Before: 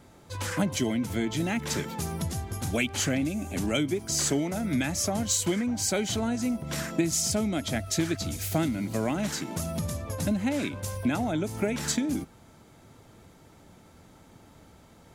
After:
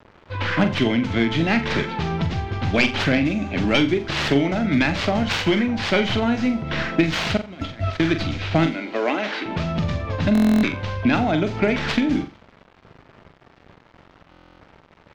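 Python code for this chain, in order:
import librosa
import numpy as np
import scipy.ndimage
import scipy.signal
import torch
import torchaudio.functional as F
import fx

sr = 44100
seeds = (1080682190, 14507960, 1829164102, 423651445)

y = fx.tracing_dist(x, sr, depth_ms=0.46)
y = fx.highpass(y, sr, hz=300.0, slope=24, at=(8.66, 9.46))
y = fx.env_lowpass(y, sr, base_hz=1500.0, full_db=-24.0)
y = fx.peak_eq(y, sr, hz=2900.0, db=7.5, octaves=2.2)
y = fx.over_compress(y, sr, threshold_db=-36.0, ratio=-0.5, at=(7.37, 8.0))
y = np.where(np.abs(y) >= 10.0 ** (-48.5 / 20.0), y, 0.0)
y = fx.air_absorb(y, sr, metres=200.0)
y = fx.room_flutter(y, sr, wall_m=7.4, rt60_s=0.28)
y = fx.buffer_glitch(y, sr, at_s=(10.33, 14.3), block=1024, repeats=12)
y = F.gain(torch.from_numpy(y), 7.5).numpy()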